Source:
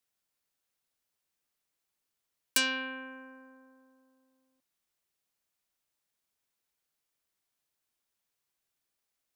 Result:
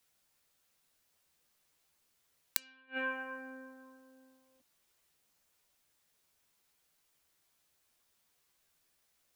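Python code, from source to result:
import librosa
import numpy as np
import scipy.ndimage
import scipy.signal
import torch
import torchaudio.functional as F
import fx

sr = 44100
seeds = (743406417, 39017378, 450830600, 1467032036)

y = fx.chorus_voices(x, sr, voices=4, hz=0.74, base_ms=13, depth_ms=1.1, mix_pct=35)
y = fx.gate_flip(y, sr, shuts_db=-31.0, range_db=-37)
y = y * librosa.db_to_amplitude(11.5)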